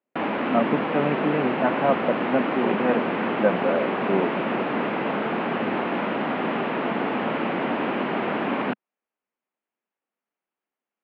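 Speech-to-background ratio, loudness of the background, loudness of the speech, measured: -0.5 dB, -25.5 LUFS, -26.0 LUFS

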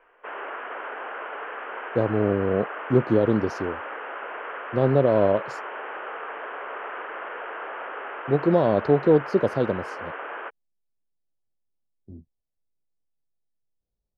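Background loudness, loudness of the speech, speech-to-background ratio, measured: -34.5 LUFS, -23.0 LUFS, 11.5 dB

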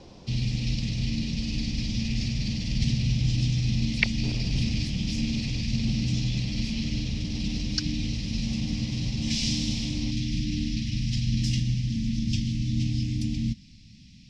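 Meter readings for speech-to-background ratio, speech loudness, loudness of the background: -5.0 dB, -33.0 LUFS, -28.0 LUFS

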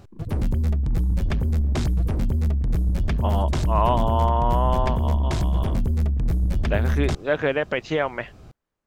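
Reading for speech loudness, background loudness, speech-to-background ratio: -26.0 LUFS, -24.0 LUFS, -2.0 dB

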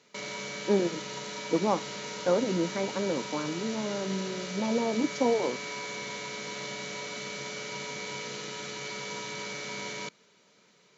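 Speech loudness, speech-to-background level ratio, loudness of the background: -30.5 LUFS, 6.0 dB, -36.5 LUFS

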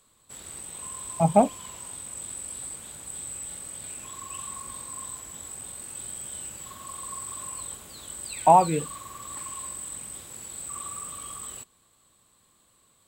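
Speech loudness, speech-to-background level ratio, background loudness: -22.0 LUFS, 14.0 dB, -36.0 LUFS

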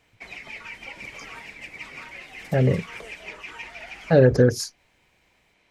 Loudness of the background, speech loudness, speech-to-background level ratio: -38.0 LUFS, -20.5 LUFS, 17.5 dB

